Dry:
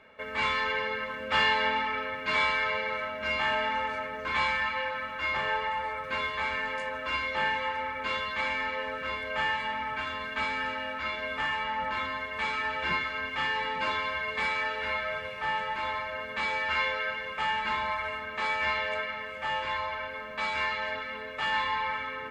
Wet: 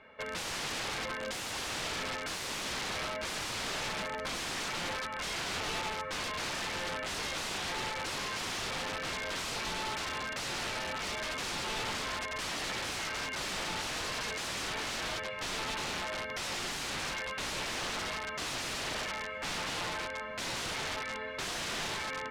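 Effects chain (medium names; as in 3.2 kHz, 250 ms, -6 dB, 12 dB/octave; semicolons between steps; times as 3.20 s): 4.25–6.52 s: peaking EQ 4.6 kHz -3.5 dB 1.9 oct; integer overflow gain 29 dB; distance through air 65 m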